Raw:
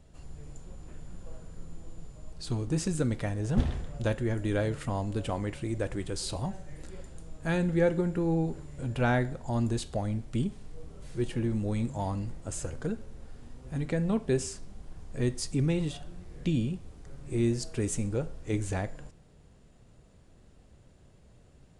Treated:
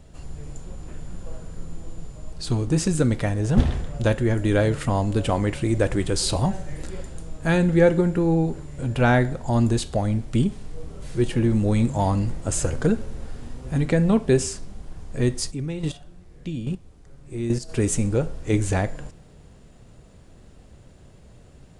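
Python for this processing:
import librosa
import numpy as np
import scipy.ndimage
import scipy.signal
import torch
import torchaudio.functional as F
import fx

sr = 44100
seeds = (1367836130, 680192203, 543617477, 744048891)

y = fx.rider(x, sr, range_db=10, speed_s=2.0)
y = fx.chopper(y, sr, hz=1.2, depth_pct=65, duty_pct=10, at=(15.5, 17.68), fade=0.02)
y = y * 10.0 ** (8.5 / 20.0)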